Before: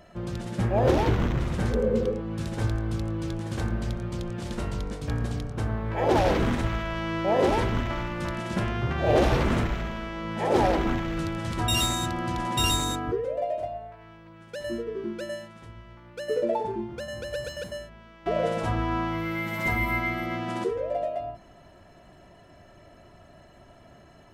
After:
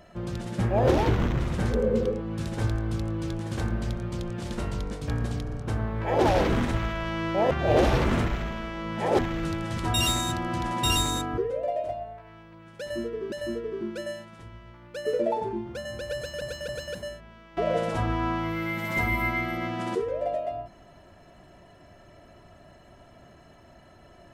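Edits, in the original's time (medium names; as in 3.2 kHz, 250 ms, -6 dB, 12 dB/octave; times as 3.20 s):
5.42 s: stutter 0.05 s, 3 plays
7.41–8.90 s: delete
10.58–10.93 s: delete
14.55–15.06 s: loop, 2 plays
17.38–17.65 s: loop, 3 plays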